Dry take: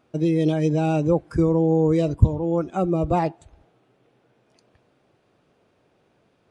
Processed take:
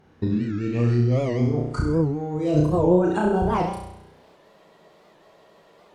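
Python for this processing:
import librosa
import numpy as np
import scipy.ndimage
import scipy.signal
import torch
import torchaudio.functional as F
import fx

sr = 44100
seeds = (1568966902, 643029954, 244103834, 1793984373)

p1 = fx.speed_glide(x, sr, from_pct=61, to_pct=158)
p2 = np.clip(p1, -10.0 ** (-13.5 / 20.0), 10.0 ** (-13.5 / 20.0))
p3 = p1 + (p2 * librosa.db_to_amplitude(-5.5))
p4 = fx.over_compress(p3, sr, threshold_db=-22.0, ratio=-1.0)
p5 = p4 + fx.room_flutter(p4, sr, wall_m=5.7, rt60_s=0.75, dry=0)
p6 = fx.spec_freeze(p5, sr, seeds[0], at_s=4.4, hold_s=1.61)
p7 = fx.record_warp(p6, sr, rpm=78.0, depth_cents=160.0)
y = p7 * librosa.db_to_amplitude(-2.5)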